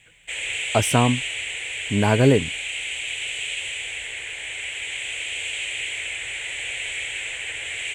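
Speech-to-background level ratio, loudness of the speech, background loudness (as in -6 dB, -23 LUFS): 6.0 dB, -21.0 LUFS, -27.0 LUFS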